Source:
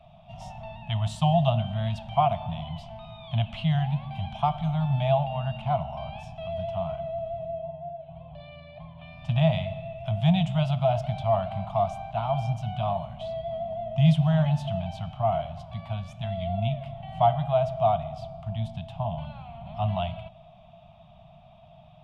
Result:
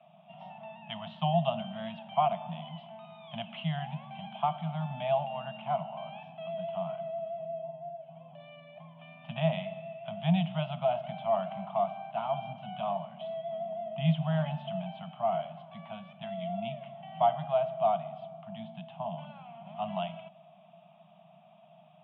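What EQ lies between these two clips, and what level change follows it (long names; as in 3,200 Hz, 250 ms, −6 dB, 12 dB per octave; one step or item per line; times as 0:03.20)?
Chebyshev band-pass filter 170–3,200 Hz, order 4
−3.0 dB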